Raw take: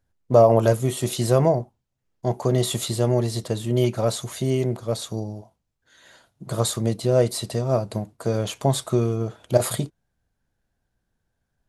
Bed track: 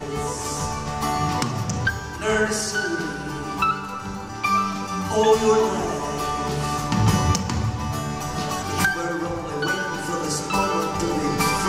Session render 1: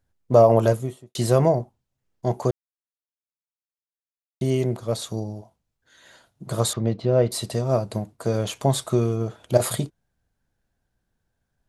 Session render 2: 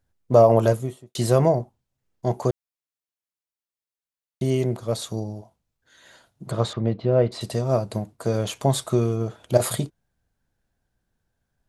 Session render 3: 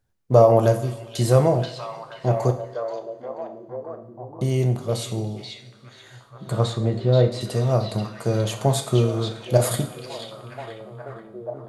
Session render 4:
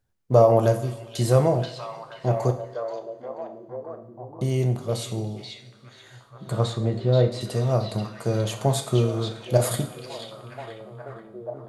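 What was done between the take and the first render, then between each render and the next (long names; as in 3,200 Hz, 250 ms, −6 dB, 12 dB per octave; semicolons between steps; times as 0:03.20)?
0:00.58–0:01.15: fade out and dull; 0:02.51–0:04.41: silence; 0:06.73–0:07.32: high-frequency loss of the air 240 metres
0:06.51–0:07.41: low-pass filter 3,500 Hz
echo through a band-pass that steps 482 ms, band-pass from 3,400 Hz, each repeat −0.7 octaves, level −2 dB; coupled-rooms reverb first 0.53 s, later 2.7 s, from −18 dB, DRR 6 dB
level −2 dB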